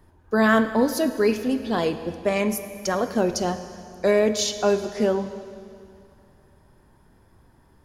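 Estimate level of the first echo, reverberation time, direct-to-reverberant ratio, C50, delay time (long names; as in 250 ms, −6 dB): no echo audible, 2.5 s, 9.5 dB, 11.0 dB, no echo audible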